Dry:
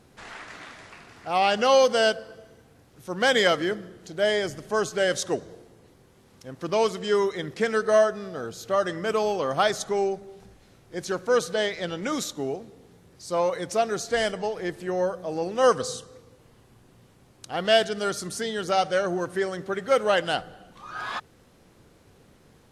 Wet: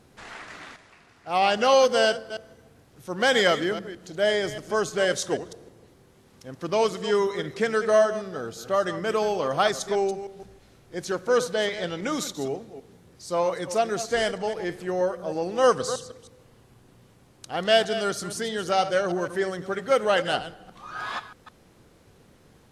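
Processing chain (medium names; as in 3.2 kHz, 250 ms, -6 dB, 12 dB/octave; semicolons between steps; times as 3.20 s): chunks repeated in reverse 158 ms, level -12 dB; 0.76–1.35 s: upward expansion 1.5:1, over -40 dBFS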